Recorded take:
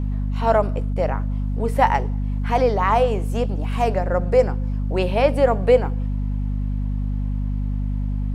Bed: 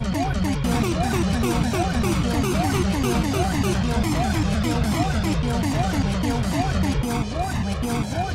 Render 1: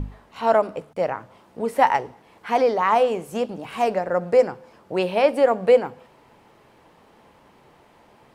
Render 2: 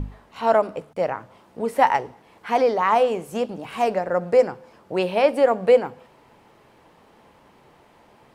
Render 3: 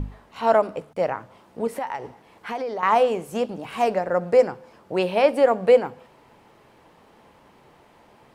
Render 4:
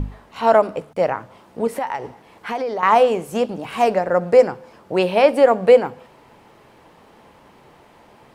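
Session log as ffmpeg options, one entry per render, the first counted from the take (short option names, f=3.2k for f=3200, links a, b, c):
-af "bandreject=f=50:t=h:w=6,bandreject=f=100:t=h:w=6,bandreject=f=150:t=h:w=6,bandreject=f=200:t=h:w=6,bandreject=f=250:t=h:w=6"
-af anull
-filter_complex "[0:a]asettb=1/sr,asplit=3[a][b][c];[a]atrim=end=1.674[d];[b]atrim=start=1.67:end=2.83,asetpts=PTS-STARTPTS,afade=t=in:d=0.004:c=qsin,afade=t=out:st=1.156:d=0.004:c=qsin,acompressor=threshold=-27dB:ratio=4:attack=3.2:release=140:knee=1:detection=peak[e];[c]atrim=start=2.826[f];[d][e]acrossfade=d=0.004:c1=hsin:c2=qsin[g];[g][f]acrossfade=d=0.004:c1=qsin:c2=hsin"
-af "volume=4.5dB,alimiter=limit=-2dB:level=0:latency=1"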